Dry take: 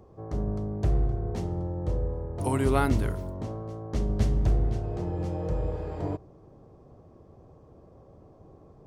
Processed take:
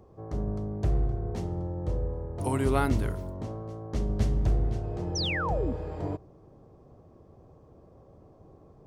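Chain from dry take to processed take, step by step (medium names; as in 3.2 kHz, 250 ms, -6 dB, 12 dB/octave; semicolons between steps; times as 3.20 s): painted sound fall, 5.15–5.73 s, 220–6300 Hz -30 dBFS; trim -1.5 dB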